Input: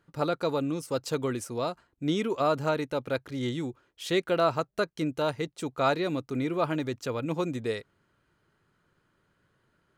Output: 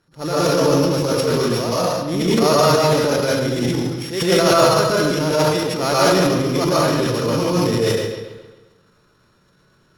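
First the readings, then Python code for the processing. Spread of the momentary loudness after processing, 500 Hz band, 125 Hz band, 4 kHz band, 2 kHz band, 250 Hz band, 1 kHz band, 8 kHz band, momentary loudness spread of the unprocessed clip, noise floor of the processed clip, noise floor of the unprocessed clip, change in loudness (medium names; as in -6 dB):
7 LU, +12.5 dB, +14.0 dB, +16.0 dB, +12.0 dB, +11.5 dB, +12.0 dB, +19.0 dB, 8 LU, -58 dBFS, -73 dBFS, +12.5 dB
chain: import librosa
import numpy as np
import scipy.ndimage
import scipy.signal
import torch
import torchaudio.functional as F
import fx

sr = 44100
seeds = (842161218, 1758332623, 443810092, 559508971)

y = np.r_[np.sort(x[:len(x) // 8 * 8].reshape(-1, 8), axis=1).ravel(), x[len(x) // 8 * 8:]]
y = scipy.signal.sosfilt(scipy.signal.butter(2, 12000.0, 'lowpass', fs=sr, output='sos'), y)
y = fx.rev_plate(y, sr, seeds[0], rt60_s=0.7, hf_ratio=0.95, predelay_ms=105, drr_db=-7.0)
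y = fx.transient(y, sr, attack_db=-9, sustain_db=8)
y = fx.echo_bbd(y, sr, ms=134, stages=4096, feedback_pct=47, wet_db=-9.0)
y = y * 10.0 ** (4.5 / 20.0)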